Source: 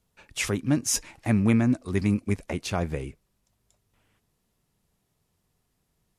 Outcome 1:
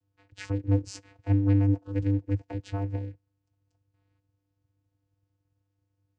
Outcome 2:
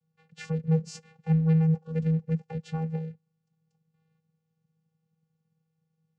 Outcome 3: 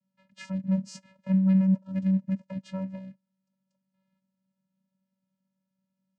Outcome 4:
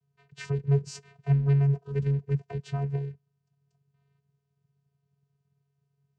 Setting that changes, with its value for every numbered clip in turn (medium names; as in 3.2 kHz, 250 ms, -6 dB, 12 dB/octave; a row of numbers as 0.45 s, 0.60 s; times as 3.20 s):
vocoder, frequency: 99 Hz, 160 Hz, 190 Hz, 140 Hz